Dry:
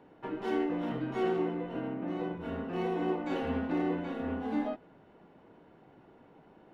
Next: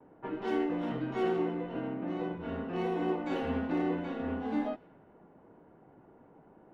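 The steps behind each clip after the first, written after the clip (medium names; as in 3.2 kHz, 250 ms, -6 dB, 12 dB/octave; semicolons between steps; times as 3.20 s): gate with hold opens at -53 dBFS; level-controlled noise filter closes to 1.3 kHz, open at -28.5 dBFS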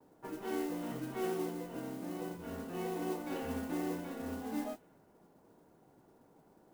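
modulation noise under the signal 17 dB; trim -6 dB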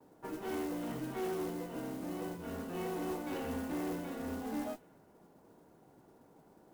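valve stage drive 35 dB, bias 0.3; trim +3 dB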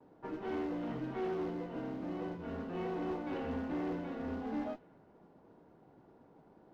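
distance through air 240 m; trim +1 dB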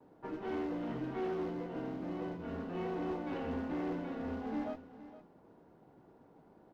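delay 463 ms -15 dB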